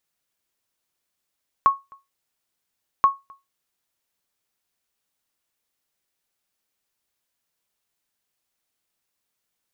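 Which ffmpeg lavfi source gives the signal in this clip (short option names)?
-f lavfi -i "aevalsrc='0.422*(sin(2*PI*1100*mod(t,1.38))*exp(-6.91*mod(t,1.38)/0.21)+0.0335*sin(2*PI*1100*max(mod(t,1.38)-0.26,0))*exp(-6.91*max(mod(t,1.38)-0.26,0)/0.21))':d=2.76:s=44100"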